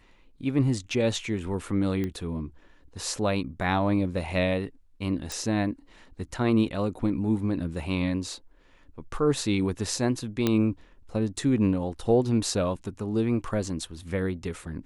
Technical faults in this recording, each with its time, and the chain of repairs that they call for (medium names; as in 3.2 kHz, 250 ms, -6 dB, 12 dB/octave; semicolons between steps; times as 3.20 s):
2.04 s: pop -19 dBFS
5.32 s: pop
10.47 s: pop -10 dBFS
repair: de-click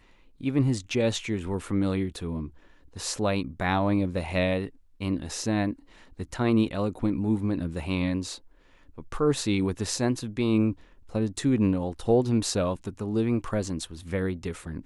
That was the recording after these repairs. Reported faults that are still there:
nothing left